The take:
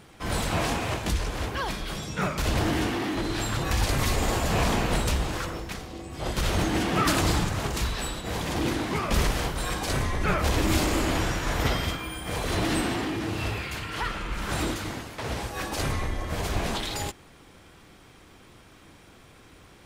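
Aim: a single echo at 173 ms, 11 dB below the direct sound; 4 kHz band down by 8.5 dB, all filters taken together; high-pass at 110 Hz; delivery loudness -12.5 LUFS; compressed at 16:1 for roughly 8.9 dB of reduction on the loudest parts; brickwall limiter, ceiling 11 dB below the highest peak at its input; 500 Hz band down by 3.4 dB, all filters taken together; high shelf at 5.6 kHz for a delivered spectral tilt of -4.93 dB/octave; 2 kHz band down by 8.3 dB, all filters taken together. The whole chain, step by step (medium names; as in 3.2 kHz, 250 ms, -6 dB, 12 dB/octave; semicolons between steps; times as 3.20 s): high-pass 110 Hz; peaking EQ 500 Hz -4 dB; peaking EQ 2 kHz -8.5 dB; peaking EQ 4 kHz -6.5 dB; treble shelf 5.6 kHz -4 dB; compression 16:1, threshold -32 dBFS; peak limiter -34 dBFS; delay 173 ms -11 dB; trim +30 dB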